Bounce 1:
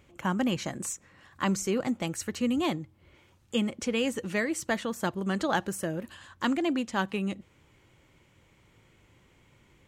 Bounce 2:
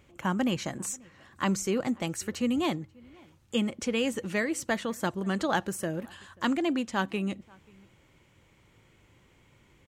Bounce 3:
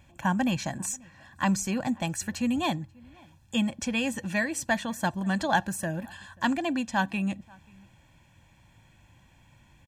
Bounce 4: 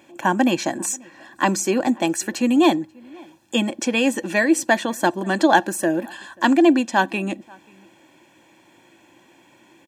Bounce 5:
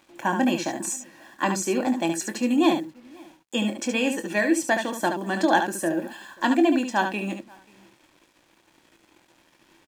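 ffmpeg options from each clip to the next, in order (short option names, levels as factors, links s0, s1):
-filter_complex "[0:a]asplit=2[s0][s1];[s1]adelay=536.4,volume=0.0501,highshelf=f=4000:g=-12.1[s2];[s0][s2]amix=inputs=2:normalize=0"
-af "aecho=1:1:1.2:0.82"
-af "highpass=f=340:t=q:w=4.2,volume=2.37"
-filter_complex "[0:a]acrusher=bits=7:mix=0:aa=0.5,asplit=2[s0][s1];[s1]aecho=0:1:24|72:0.316|0.447[s2];[s0][s2]amix=inputs=2:normalize=0,volume=0.531"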